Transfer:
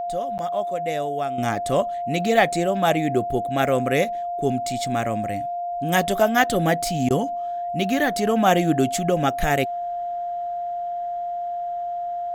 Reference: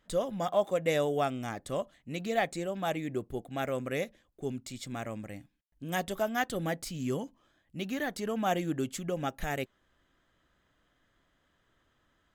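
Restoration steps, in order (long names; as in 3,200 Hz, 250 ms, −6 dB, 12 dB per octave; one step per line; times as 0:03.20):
notch filter 700 Hz, Q 30
repair the gap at 0:00.38, 9.7 ms
repair the gap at 0:07.09, 14 ms
level 0 dB, from 0:01.38 −12 dB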